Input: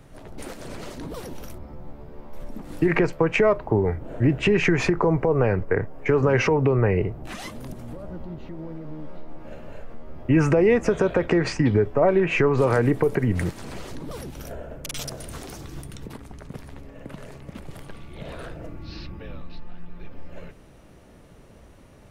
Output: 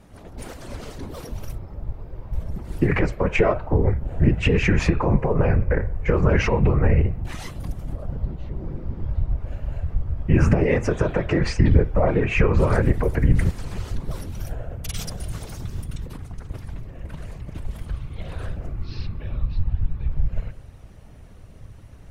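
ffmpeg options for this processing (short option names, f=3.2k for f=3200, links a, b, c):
-af "bandreject=f=123.9:t=h:w=4,bandreject=f=247.8:t=h:w=4,bandreject=f=371.7:t=h:w=4,bandreject=f=495.6:t=h:w=4,bandreject=f=619.5:t=h:w=4,bandreject=f=743.4:t=h:w=4,bandreject=f=867.3:t=h:w=4,bandreject=f=991.2:t=h:w=4,bandreject=f=1.1151k:t=h:w=4,bandreject=f=1.239k:t=h:w=4,bandreject=f=1.3629k:t=h:w=4,bandreject=f=1.4868k:t=h:w=4,bandreject=f=1.6107k:t=h:w=4,bandreject=f=1.7346k:t=h:w=4,bandreject=f=1.8585k:t=h:w=4,bandreject=f=1.9824k:t=h:w=4,bandreject=f=2.1063k:t=h:w=4,bandreject=f=2.2302k:t=h:w=4,bandreject=f=2.3541k:t=h:w=4,bandreject=f=2.478k:t=h:w=4,bandreject=f=2.6019k:t=h:w=4,bandreject=f=2.7258k:t=h:w=4,bandreject=f=2.8497k:t=h:w=4,bandreject=f=2.9736k:t=h:w=4,bandreject=f=3.0975k:t=h:w=4,bandreject=f=3.2214k:t=h:w=4,bandreject=f=3.3453k:t=h:w=4,bandreject=f=3.4692k:t=h:w=4,bandreject=f=3.5931k:t=h:w=4,bandreject=f=3.717k:t=h:w=4,bandreject=f=3.8409k:t=h:w=4,bandreject=f=3.9648k:t=h:w=4,bandreject=f=4.0887k:t=h:w=4,bandreject=f=4.2126k:t=h:w=4,afftfilt=real='hypot(re,im)*cos(2*PI*random(0))':imag='hypot(re,im)*sin(2*PI*random(1))':win_size=512:overlap=0.75,asubboost=boost=4:cutoff=130,volume=5.5dB"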